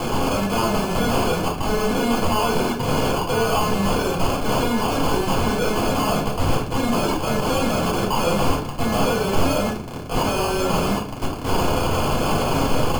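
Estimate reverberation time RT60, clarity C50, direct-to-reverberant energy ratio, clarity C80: 0.45 s, 6.5 dB, -5.0 dB, 12.0 dB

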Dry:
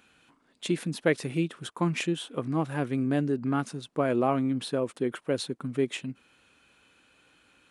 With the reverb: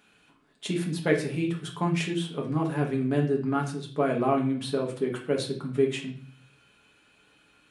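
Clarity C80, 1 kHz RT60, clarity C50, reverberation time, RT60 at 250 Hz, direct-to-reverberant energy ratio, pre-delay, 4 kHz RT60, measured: 13.5 dB, 0.45 s, 8.5 dB, 0.45 s, 0.70 s, -0.5 dB, 5 ms, 0.45 s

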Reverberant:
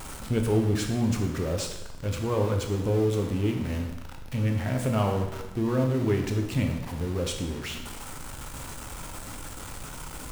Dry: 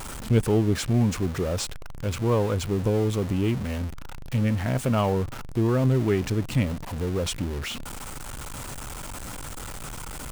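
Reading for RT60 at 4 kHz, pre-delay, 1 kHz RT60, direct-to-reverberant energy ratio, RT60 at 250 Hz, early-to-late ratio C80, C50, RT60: 0.95 s, 5 ms, 1.0 s, 3.0 dB, 0.95 s, 8.0 dB, 6.0 dB, 1.0 s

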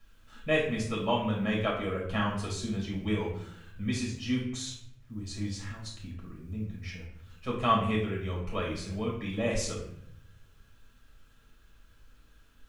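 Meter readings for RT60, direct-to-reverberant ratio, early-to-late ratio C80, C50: 0.70 s, -3.5 dB, 8.0 dB, 4.0 dB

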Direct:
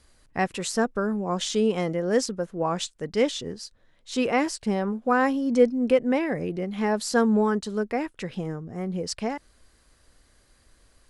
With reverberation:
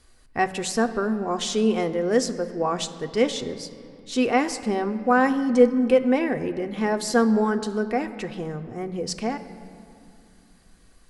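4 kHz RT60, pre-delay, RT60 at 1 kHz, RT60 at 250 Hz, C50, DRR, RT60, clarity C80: 1.5 s, 3 ms, 2.6 s, 3.5 s, 12.5 dB, 7.0 dB, 2.6 s, 13.5 dB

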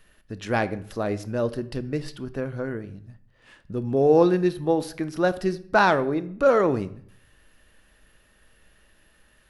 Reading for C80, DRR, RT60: 19.5 dB, 12.0 dB, 0.60 s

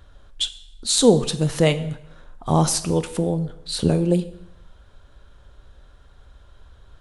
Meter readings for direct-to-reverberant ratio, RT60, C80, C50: 11.0 dB, 0.75 s, 17.0 dB, 14.5 dB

